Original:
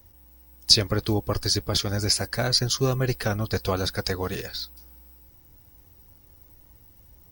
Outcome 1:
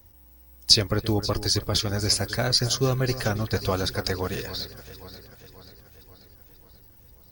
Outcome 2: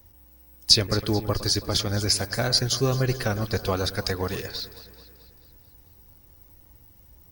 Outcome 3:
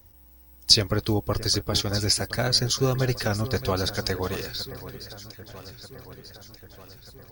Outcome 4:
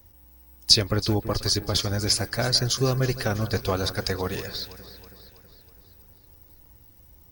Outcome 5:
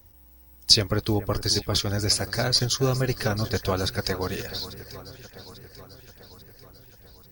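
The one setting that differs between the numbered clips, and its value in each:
echo whose repeats swap between lows and highs, time: 268 ms, 109 ms, 619 ms, 162 ms, 421 ms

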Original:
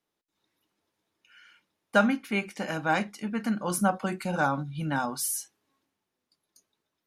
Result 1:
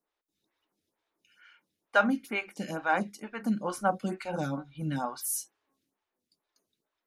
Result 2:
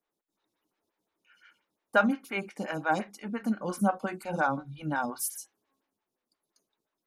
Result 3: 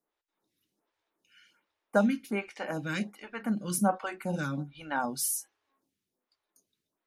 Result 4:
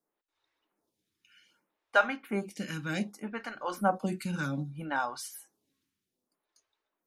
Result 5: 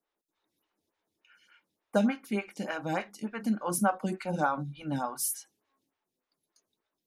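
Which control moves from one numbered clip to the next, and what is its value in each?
lamp-driven phase shifter, rate: 2.2 Hz, 5.7 Hz, 1.3 Hz, 0.64 Hz, 3.4 Hz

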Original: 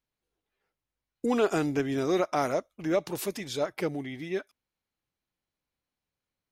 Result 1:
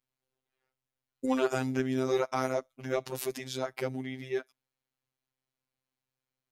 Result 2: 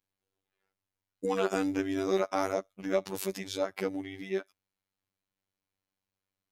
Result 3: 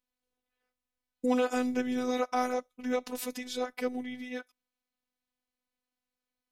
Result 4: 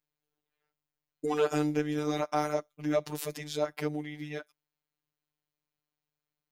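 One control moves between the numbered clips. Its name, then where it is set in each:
robot voice, frequency: 130 Hz, 96 Hz, 250 Hz, 150 Hz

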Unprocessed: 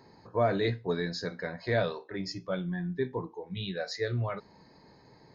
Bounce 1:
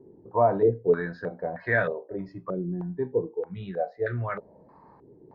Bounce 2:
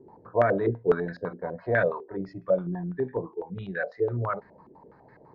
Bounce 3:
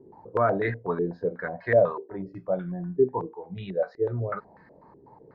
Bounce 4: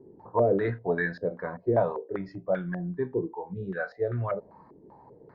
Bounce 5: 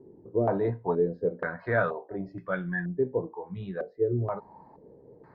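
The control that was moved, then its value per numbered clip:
step-sequenced low-pass, rate: 3.2 Hz, 12 Hz, 8.1 Hz, 5.1 Hz, 2.1 Hz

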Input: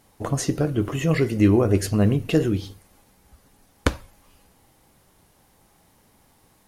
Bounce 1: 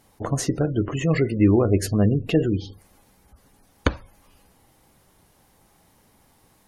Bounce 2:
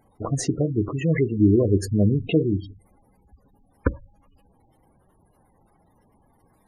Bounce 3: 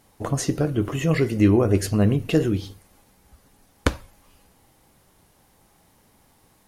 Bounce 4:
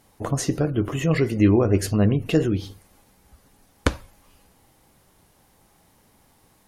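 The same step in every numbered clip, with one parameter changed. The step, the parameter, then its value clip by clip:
spectral gate, under each frame's peak: -30 dB, -15 dB, -60 dB, -45 dB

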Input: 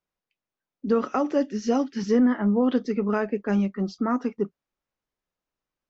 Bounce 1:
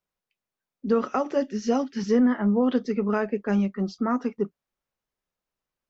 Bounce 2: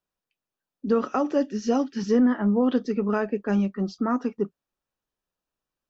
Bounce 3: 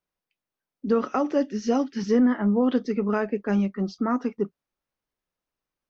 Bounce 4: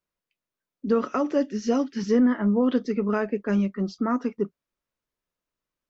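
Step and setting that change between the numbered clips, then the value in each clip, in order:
band-stop, frequency: 300 Hz, 2.1 kHz, 7.2 kHz, 790 Hz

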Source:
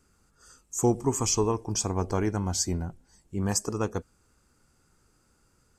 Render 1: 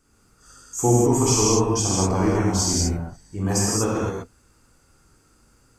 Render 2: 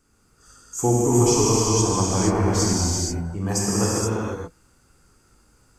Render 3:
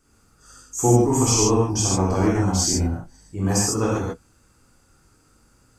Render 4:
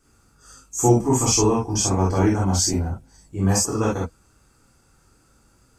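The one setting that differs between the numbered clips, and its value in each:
gated-style reverb, gate: 270 ms, 510 ms, 170 ms, 90 ms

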